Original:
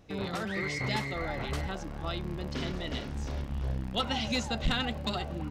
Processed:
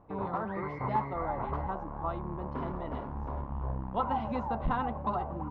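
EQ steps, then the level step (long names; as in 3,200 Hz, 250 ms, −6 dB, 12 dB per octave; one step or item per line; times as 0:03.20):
low-pass with resonance 1,000 Hz, resonance Q 5
−2.5 dB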